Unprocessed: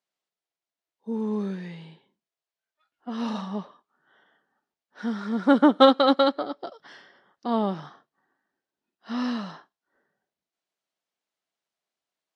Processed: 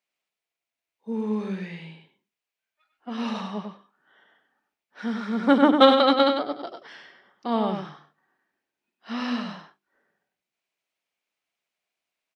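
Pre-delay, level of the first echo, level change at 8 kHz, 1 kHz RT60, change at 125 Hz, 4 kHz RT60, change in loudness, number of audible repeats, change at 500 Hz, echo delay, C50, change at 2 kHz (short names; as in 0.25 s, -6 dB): none, -6.5 dB, n/a, none, 0.0 dB, none, +1.0 dB, 1, +1.0 dB, 98 ms, none, +3.0 dB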